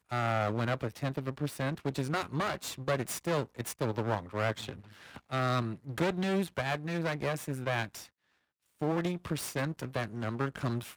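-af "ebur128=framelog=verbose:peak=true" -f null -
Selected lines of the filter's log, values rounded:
Integrated loudness:
  I:         -33.6 LUFS
  Threshold: -43.8 LUFS
Loudness range:
  LRA:         2.3 LU
  Threshold: -54.1 LUFS
  LRA low:   -35.4 LUFS
  LRA high:  -33.2 LUFS
True peak:
  Peak:      -15.6 dBFS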